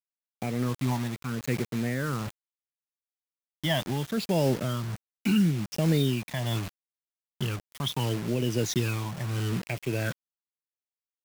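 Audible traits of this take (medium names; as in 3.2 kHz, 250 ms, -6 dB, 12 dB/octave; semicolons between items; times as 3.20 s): phasing stages 12, 0.74 Hz, lowest notch 440–1300 Hz; a quantiser's noise floor 6-bit, dither none; tremolo triangle 1.4 Hz, depth 50%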